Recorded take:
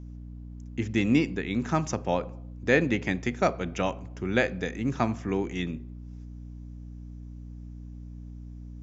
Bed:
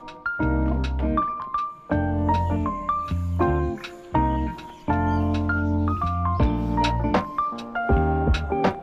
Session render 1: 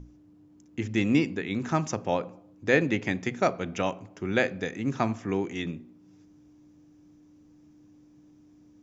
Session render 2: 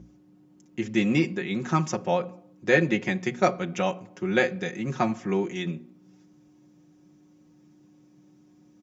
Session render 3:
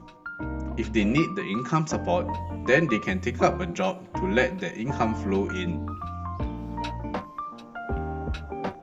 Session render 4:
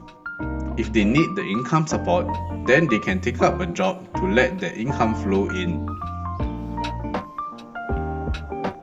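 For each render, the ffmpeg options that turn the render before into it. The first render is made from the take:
-af "bandreject=f=60:t=h:w=6,bandreject=f=120:t=h:w=6,bandreject=f=180:t=h:w=6,bandreject=f=240:t=h:w=6"
-af "highpass=84,aecho=1:1:5.5:0.77"
-filter_complex "[1:a]volume=0.316[s0];[0:a][s0]amix=inputs=2:normalize=0"
-af "volume=1.68,alimiter=limit=0.708:level=0:latency=1"

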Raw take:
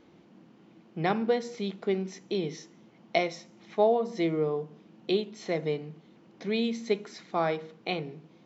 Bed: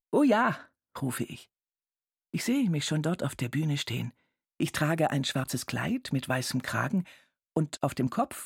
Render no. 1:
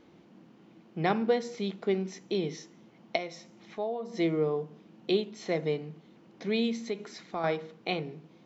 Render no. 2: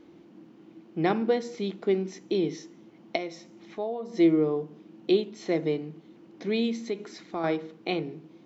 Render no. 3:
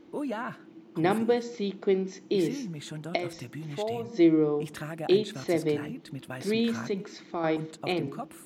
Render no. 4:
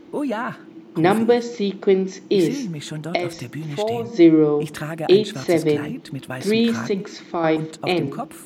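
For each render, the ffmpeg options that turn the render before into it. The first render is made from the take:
-filter_complex "[0:a]asettb=1/sr,asplit=3[s0][s1][s2];[s0]atrim=end=3.164[s3];[s1]atrim=start=3.16:end=4.14,asetpts=PTS-STARTPTS,afade=t=in:d=0.004:c=qsin,afade=t=out:st=0.976:d=0.004:c=qsin,acompressor=threshold=0.00447:ratio=1.5:attack=3.2:release=140:knee=1:detection=peak[s4];[s2]atrim=start=4.136[s5];[s3][s4]acrossfade=d=0.004:c1=hsin:c2=qsin[s6];[s6][s5]acrossfade=d=0.004:c1=qsin:c2=hsin,asettb=1/sr,asplit=3[s7][s8][s9];[s7]atrim=end=6.874[s10];[s8]atrim=start=6.87:end=7.44,asetpts=PTS-STARTPTS,afade=t=in:d=0.004:c=qsin,afade=t=out:st=0.566:d=0.004:c=qsin,acompressor=threshold=0.0224:ratio=2:attack=3.2:release=140:knee=1:detection=peak[s11];[s9]atrim=start=7.436[s12];[s10][s11]acrossfade=d=0.004:c1=hsin:c2=qsin[s13];[s13][s12]acrossfade=d=0.004:c1=qsin:c2=hsin"
-af "equalizer=f=320:w=3.2:g=9.5"
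-filter_complex "[1:a]volume=0.316[s0];[0:a][s0]amix=inputs=2:normalize=0"
-af "volume=2.66,alimiter=limit=0.708:level=0:latency=1"

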